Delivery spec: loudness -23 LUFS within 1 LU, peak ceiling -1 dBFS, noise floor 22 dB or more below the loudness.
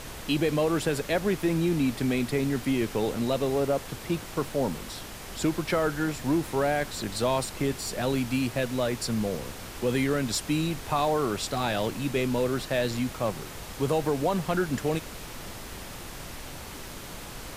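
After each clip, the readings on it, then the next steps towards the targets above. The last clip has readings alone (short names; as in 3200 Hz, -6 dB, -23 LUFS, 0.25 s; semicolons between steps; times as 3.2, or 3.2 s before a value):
noise floor -41 dBFS; noise floor target -50 dBFS; loudness -28.0 LUFS; peak -13.5 dBFS; loudness target -23.0 LUFS
-> noise print and reduce 9 dB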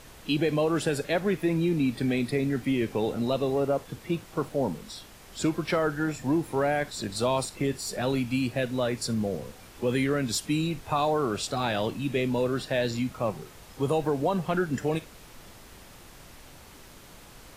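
noise floor -50 dBFS; loudness -28.0 LUFS; peak -14.0 dBFS; loudness target -23.0 LUFS
-> gain +5 dB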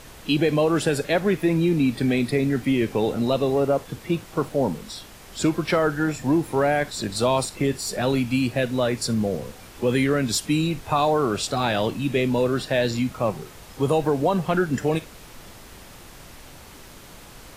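loudness -23.0 LUFS; peak -9.0 dBFS; noise floor -45 dBFS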